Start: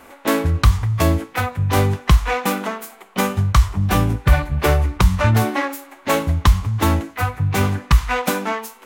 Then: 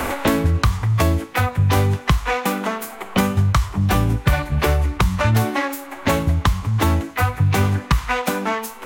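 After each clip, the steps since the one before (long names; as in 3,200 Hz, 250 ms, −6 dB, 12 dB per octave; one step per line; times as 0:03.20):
multiband upward and downward compressor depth 100%
level −1.5 dB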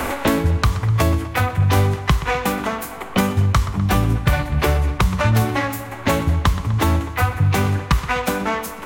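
feedback echo with a low-pass in the loop 125 ms, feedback 71%, low-pass 4,600 Hz, level −14 dB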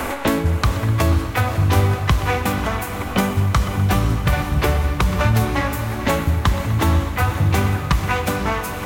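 feedback delay with all-pass diffusion 517 ms, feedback 54%, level −8 dB
level −1 dB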